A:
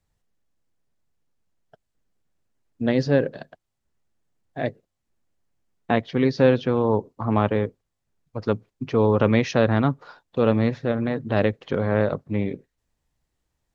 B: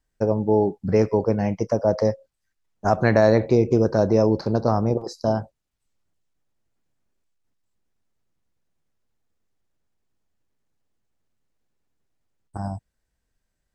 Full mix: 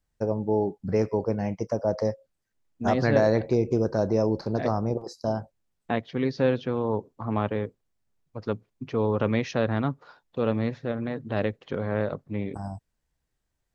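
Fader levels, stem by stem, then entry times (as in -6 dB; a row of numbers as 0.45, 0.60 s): -6.0, -5.5 dB; 0.00, 0.00 s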